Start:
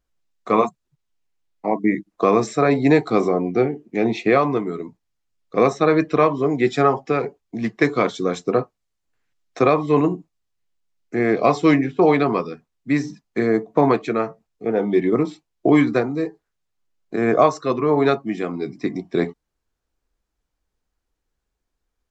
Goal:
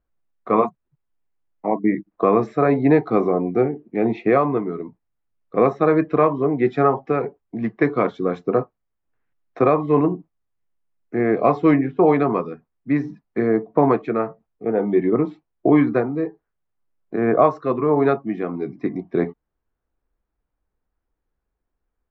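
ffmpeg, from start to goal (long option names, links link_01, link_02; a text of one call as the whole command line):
ffmpeg -i in.wav -af "lowpass=1700" out.wav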